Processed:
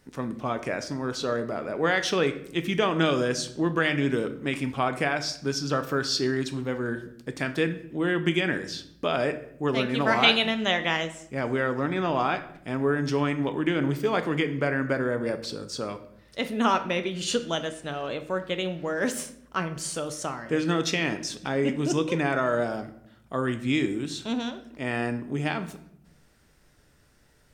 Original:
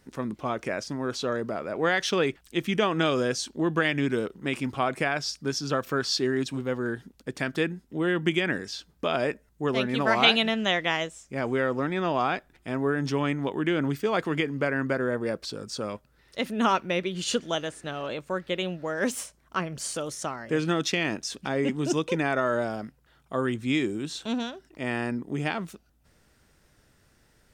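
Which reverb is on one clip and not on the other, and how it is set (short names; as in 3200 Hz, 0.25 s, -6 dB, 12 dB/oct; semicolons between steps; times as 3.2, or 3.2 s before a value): shoebox room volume 160 m³, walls mixed, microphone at 0.36 m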